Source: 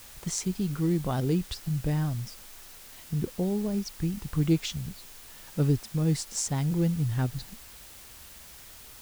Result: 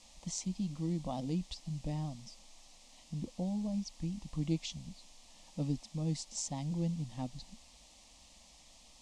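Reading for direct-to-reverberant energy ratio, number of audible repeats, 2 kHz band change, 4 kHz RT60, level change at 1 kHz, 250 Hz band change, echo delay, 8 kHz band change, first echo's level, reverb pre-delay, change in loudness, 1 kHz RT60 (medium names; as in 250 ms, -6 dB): no reverb, no echo, -14.0 dB, no reverb, -7.0 dB, -8.0 dB, no echo, -8.0 dB, no echo, no reverb, -9.0 dB, no reverb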